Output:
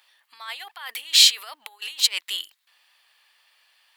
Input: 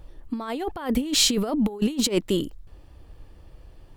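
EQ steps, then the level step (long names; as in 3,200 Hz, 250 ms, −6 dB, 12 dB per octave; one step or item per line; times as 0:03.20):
high-pass filter 950 Hz 24 dB per octave
flat-topped bell 2,800 Hz +8.5 dB
high-shelf EQ 6,000 Hz +9 dB
−3.0 dB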